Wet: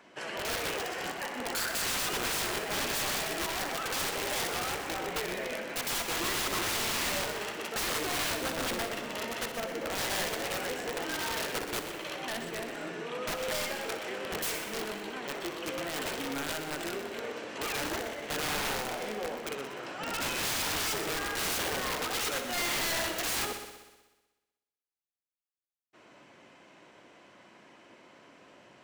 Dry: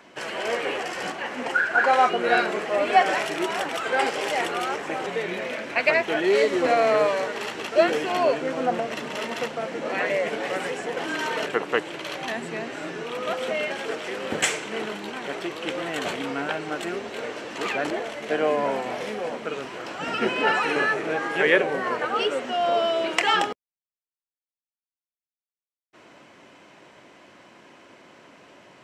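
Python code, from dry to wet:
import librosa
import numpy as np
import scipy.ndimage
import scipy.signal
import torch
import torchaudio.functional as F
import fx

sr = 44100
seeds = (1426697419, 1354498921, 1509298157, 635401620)

y = (np.mod(10.0 ** (21.0 / 20.0) * x + 1.0, 2.0) - 1.0) / 10.0 ** (21.0 / 20.0)
y = fx.echo_heads(y, sr, ms=62, heads='first and second', feedback_pct=56, wet_db=-12)
y = y * librosa.db_to_amplitude(-6.5)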